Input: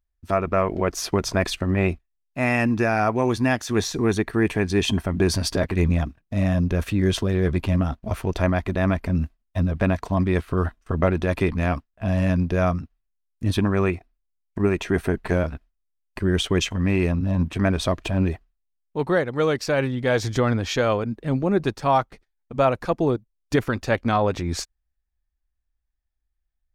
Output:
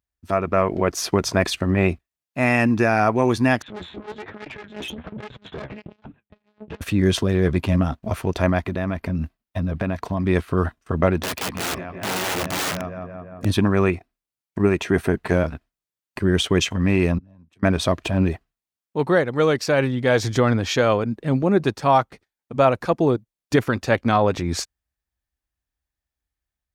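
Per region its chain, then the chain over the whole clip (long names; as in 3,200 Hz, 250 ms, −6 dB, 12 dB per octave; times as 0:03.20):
0:03.62–0:06.81: one-pitch LPC vocoder at 8 kHz 210 Hz + flanger 1.2 Hz, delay 6.6 ms, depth 9.1 ms, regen +40% + tube saturation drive 31 dB, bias 0.25
0:08.66–0:10.24: parametric band 7,600 Hz −4.5 dB 0.93 octaves + downward compressor, threshold −21 dBFS
0:11.22–0:13.45: low-shelf EQ 330 Hz −7.5 dB + feedback echo with a low-pass in the loop 173 ms, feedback 71%, low-pass 2,900 Hz, level −11.5 dB + wrap-around overflow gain 23 dB
0:17.18–0:17.63: gate with flip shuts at −25 dBFS, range −29 dB + multiband upward and downward expander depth 40%
whole clip: high-pass filter 82 Hz; automatic gain control gain up to 3 dB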